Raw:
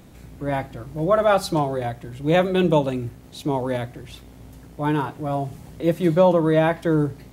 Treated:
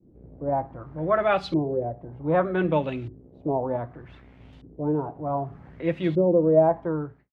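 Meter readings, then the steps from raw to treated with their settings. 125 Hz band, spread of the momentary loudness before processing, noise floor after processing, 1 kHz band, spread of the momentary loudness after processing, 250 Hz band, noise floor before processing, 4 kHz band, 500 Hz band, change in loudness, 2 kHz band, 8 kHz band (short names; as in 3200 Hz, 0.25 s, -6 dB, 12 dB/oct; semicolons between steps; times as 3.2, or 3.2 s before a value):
-5.5 dB, 14 LU, -52 dBFS, -3.5 dB, 14 LU, -4.0 dB, -45 dBFS, -9.5 dB, -3.0 dB, -3.5 dB, -5.0 dB, under -20 dB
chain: ending faded out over 0.57 s; expander -42 dBFS; LFO low-pass saw up 0.65 Hz 330–3500 Hz; gain -5.5 dB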